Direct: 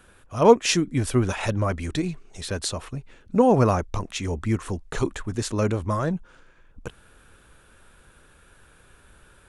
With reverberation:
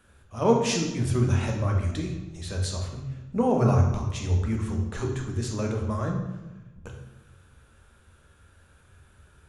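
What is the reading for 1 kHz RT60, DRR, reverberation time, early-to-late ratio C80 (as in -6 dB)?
1.0 s, 1.0 dB, 1.1 s, 7.0 dB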